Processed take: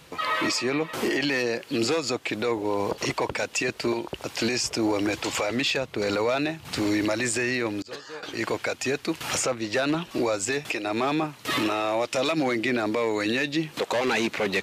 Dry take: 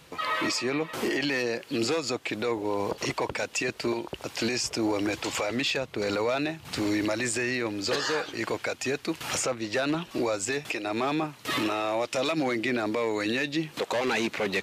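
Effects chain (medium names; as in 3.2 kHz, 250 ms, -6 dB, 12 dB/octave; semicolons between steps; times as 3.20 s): 7.82–8.23 s: expander -17 dBFS; trim +2.5 dB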